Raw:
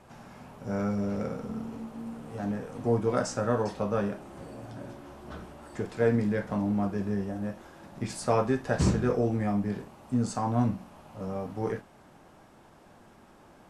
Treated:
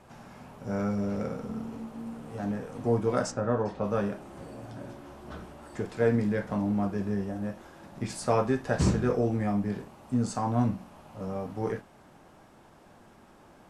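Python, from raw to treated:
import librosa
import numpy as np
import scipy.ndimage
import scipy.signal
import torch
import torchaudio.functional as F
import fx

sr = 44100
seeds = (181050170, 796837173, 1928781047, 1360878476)

y = fx.lowpass(x, sr, hz=fx.line((3.3, 1300.0), (3.83, 2100.0)), slope=6, at=(3.3, 3.83), fade=0.02)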